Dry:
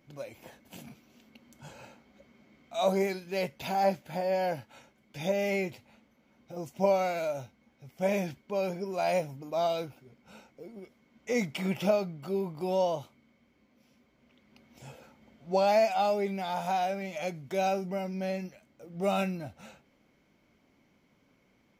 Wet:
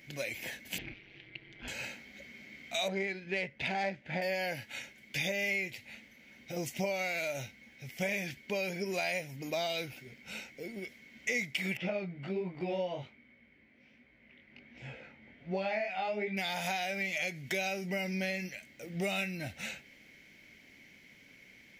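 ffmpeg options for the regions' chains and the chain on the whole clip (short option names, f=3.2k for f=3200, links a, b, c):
-filter_complex "[0:a]asettb=1/sr,asplit=3[a][b][c];[a]atrim=end=0.784[d];[b]atrim=start=0.78:end=1.68,asetpts=PTS-STARTPTS,afade=t=in:d=0.004:c=qsin,afade=t=out:st=0.896:d=0.004:c=qsin,lowpass=f=3.5k:w=0.5412,lowpass=f=3.5k:w=1.3066,aeval=exprs='val(0)*sin(2*PI*98*n/s)':c=same[e];[c]atrim=start=1.676[f];[d][e]acrossfade=d=0.004:c1=hsin:c2=qsin[g];[g][f]acrossfade=d=0.004:c1=qsin:c2=hsin,asettb=1/sr,asplit=3[h][i][j];[h]atrim=end=2.884[k];[i]atrim=start=2.88:end=4.22,asetpts=PTS-STARTPTS,afade=t=in:d=0.004:c=qsin,afade=t=out:st=1.336:d=0.004:c=qsin,lowpass=12k,adynamicsmooth=sensitivity=2:basefreq=2.1k[l];[j]atrim=start=4.216[m];[k][l]acrossfade=d=0.004:c1=hsin:c2=qsin[n];[n][m]acrossfade=d=0.004:c1=qsin:c2=hsin,asettb=1/sr,asplit=3[o][p][q];[o]atrim=end=11.774[r];[p]atrim=start=11.77:end=16.37,asetpts=PTS-STARTPTS,afade=t=in:d=0.004:c=qsin,afade=t=out:st=4.596:d=0.004:c=qsin,lowpass=2.1k,flanger=delay=16:depth=6.3:speed=1.3[s];[q]atrim=start=16.366[t];[r][s]acrossfade=d=0.004:c1=hsin:c2=qsin[u];[u][t]acrossfade=d=0.004:c1=qsin:c2=hsin,highshelf=f=1.5k:t=q:w=3:g=8.5,acompressor=threshold=-35dB:ratio=6,volume=3.5dB"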